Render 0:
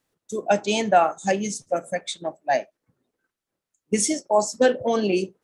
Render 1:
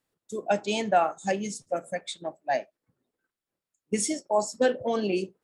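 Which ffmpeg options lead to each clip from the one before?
-af "bandreject=f=6.1k:w=11,volume=-5dB"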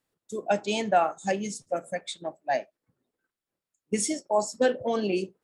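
-af anull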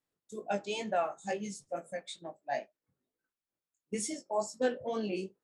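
-af "flanger=delay=18:depth=3.5:speed=2.2,volume=-5dB"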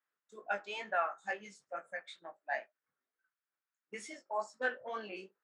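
-af "bandpass=f=1.5k:t=q:w=2.3:csg=0,volume=7.5dB"

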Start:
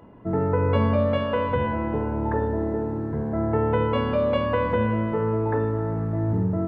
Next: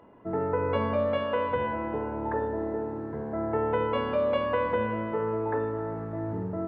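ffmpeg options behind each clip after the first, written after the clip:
-af "bass=f=250:g=-10,treble=f=4k:g=-6,volume=-2.5dB"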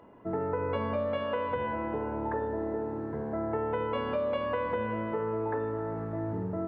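-af "acompressor=threshold=-29dB:ratio=2.5"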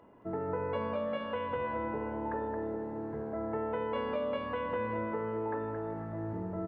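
-af "aecho=1:1:222:0.447,volume=-4dB"

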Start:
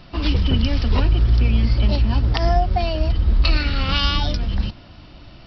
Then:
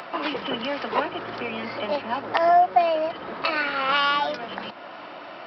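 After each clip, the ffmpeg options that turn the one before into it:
-filter_complex "[0:a]highpass=f=160:w=0.5412,highpass=f=160:w=1.3066,acrossover=split=450 2200:gain=0.0708 1 0.1[a][b][c];[a][b][c]amix=inputs=3:normalize=0,asplit=2[d][e];[e]acompressor=mode=upward:threshold=-31dB:ratio=2.5,volume=1.5dB[f];[d][f]amix=inputs=2:normalize=0"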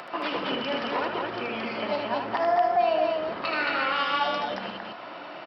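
-filter_complex "[0:a]alimiter=limit=-15.5dB:level=0:latency=1:release=50,asplit=2[a][b];[b]aecho=0:1:77|221:0.562|0.708[c];[a][c]amix=inputs=2:normalize=0,volume=-3dB"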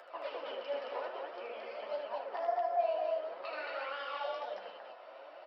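-af "flanger=delay=10:depth=8.5:regen=-30:speed=1.5:shape=sinusoidal,highpass=f=540:t=q:w=3.6,flanger=delay=0.6:depth=7.5:regen=53:speed=0.5:shape=sinusoidal,volume=-9dB"

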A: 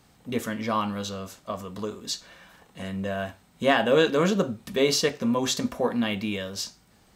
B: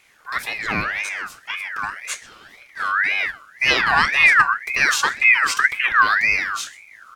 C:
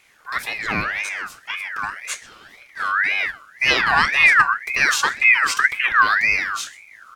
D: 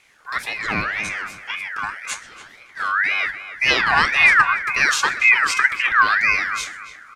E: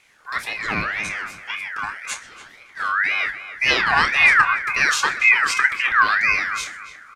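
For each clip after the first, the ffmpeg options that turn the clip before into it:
-filter_complex "[0:a]asplit=2[a][b];[b]adelay=128.3,volume=-20dB,highshelf=f=4k:g=-2.89[c];[a][c]amix=inputs=2:normalize=0,asubboost=boost=9:cutoff=170,aeval=exprs='val(0)*sin(2*PI*1800*n/s+1800*0.3/1.9*sin(2*PI*1.9*n/s))':c=same,volume=5.5dB"
-af anull
-filter_complex "[0:a]lowpass=11k,asplit=2[a][b];[b]adelay=285,lowpass=f=2.6k:p=1,volume=-11dB,asplit=2[c][d];[d]adelay=285,lowpass=f=2.6k:p=1,volume=0.31,asplit=2[e][f];[f]adelay=285,lowpass=f=2.6k:p=1,volume=0.31[g];[a][c][e][g]amix=inputs=4:normalize=0"
-filter_complex "[0:a]asplit=2[a][b];[b]adelay=28,volume=-12dB[c];[a][c]amix=inputs=2:normalize=0,volume=-1dB"

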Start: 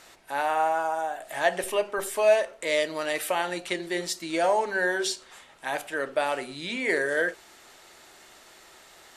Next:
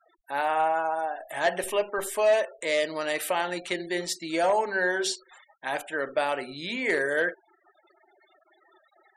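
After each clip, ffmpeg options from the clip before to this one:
-af "asoftclip=type=hard:threshold=-16.5dB,afftfilt=real='re*gte(hypot(re,im),0.00708)':imag='im*gte(hypot(re,im),0.00708)':win_size=1024:overlap=0.75"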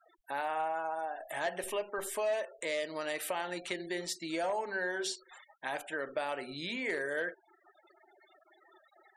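-af "acompressor=threshold=-36dB:ratio=2,volume=-1.5dB"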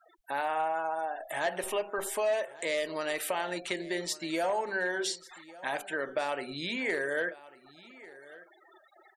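-af "aecho=1:1:1146:0.106,volume=3.5dB"

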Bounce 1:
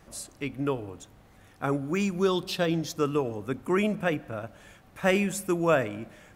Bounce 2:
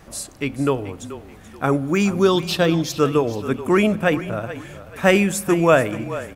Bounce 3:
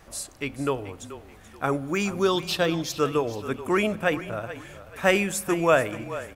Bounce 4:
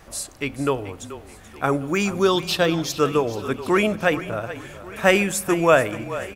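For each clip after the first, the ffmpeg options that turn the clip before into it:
-filter_complex "[0:a]asplit=4[a][b][c][d];[b]adelay=432,afreqshift=-32,volume=-14dB[e];[c]adelay=864,afreqshift=-64,volume=-23.6dB[f];[d]adelay=1296,afreqshift=-96,volume=-33.3dB[g];[a][e][f][g]amix=inputs=4:normalize=0,volume=8.5dB"
-af "equalizer=f=190:t=o:w=2:g=-6,volume=-3.5dB"
-af "aecho=1:1:1140:0.0891,volume=4dB"

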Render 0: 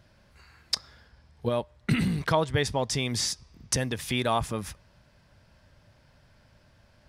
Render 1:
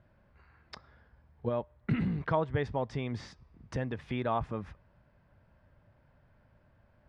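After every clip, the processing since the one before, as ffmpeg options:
-af "lowpass=1.7k,volume=-4.5dB"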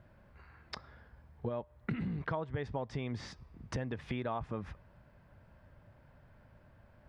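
-af "acompressor=threshold=-39dB:ratio=4,volume=4dB"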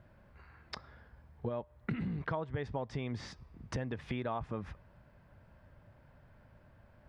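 -af anull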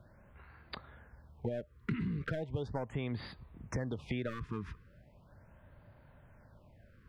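-filter_complex "[0:a]acrossover=split=510|1700[a][b][c];[b]aeval=exprs='clip(val(0),-1,0.00531)':c=same[d];[a][d][c]amix=inputs=3:normalize=0,afftfilt=real='re*(1-between(b*sr/1024,630*pow(7000/630,0.5+0.5*sin(2*PI*0.38*pts/sr))/1.41,630*pow(7000/630,0.5+0.5*sin(2*PI*0.38*pts/sr))*1.41))':imag='im*(1-between(b*sr/1024,630*pow(7000/630,0.5+0.5*sin(2*PI*0.38*pts/sr))/1.41,630*pow(7000/630,0.5+0.5*sin(2*PI*0.38*pts/sr))*1.41))':win_size=1024:overlap=0.75,volume=1dB"

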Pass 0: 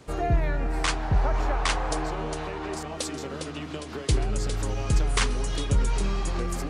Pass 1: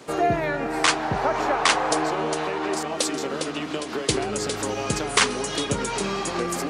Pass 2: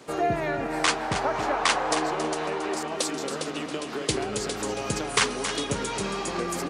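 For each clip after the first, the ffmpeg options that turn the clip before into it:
-af "highpass=230,volume=7.5dB"
-af "aecho=1:1:275|550|825:0.335|0.1|0.0301,volume=-3.5dB"

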